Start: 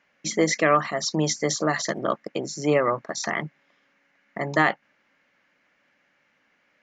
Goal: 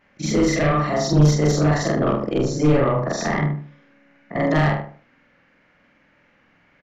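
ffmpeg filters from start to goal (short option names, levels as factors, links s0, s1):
-filter_complex "[0:a]afftfilt=real='re':imag='-im':win_size=4096:overlap=0.75,adynamicequalizer=threshold=0.00562:dfrequency=2600:dqfactor=1.2:tfrequency=2600:tqfactor=1.2:attack=5:release=100:ratio=0.375:range=2.5:mode=cutabove:tftype=bell,acrossover=split=230|3000[s0][s1][s2];[s1]acompressor=threshold=0.0398:ratio=10[s3];[s0][s3][s2]amix=inputs=3:normalize=0,asplit=2[s4][s5];[s5]aeval=exprs='0.531*sin(PI/2*8.91*val(0)/0.531)':c=same,volume=0.473[s6];[s4][s6]amix=inputs=2:normalize=0,aemphasis=mode=reproduction:type=bsi,asplit=2[s7][s8];[s8]adelay=75,lowpass=f=1500:p=1,volume=0.562,asplit=2[s9][s10];[s10]adelay=75,lowpass=f=1500:p=1,volume=0.33,asplit=2[s11][s12];[s12]adelay=75,lowpass=f=1500:p=1,volume=0.33,asplit=2[s13][s14];[s14]adelay=75,lowpass=f=1500:p=1,volume=0.33[s15];[s9][s11][s13][s15]amix=inputs=4:normalize=0[s16];[s7][s16]amix=inputs=2:normalize=0,volume=0.501"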